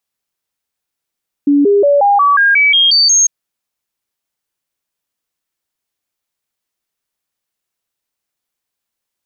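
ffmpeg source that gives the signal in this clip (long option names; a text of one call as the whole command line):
ffmpeg -f lavfi -i "aevalsrc='0.473*clip(min(mod(t,0.18),0.18-mod(t,0.18))/0.005,0,1)*sin(2*PI*286*pow(2,floor(t/0.18)/2)*mod(t,0.18))':duration=1.8:sample_rate=44100" out.wav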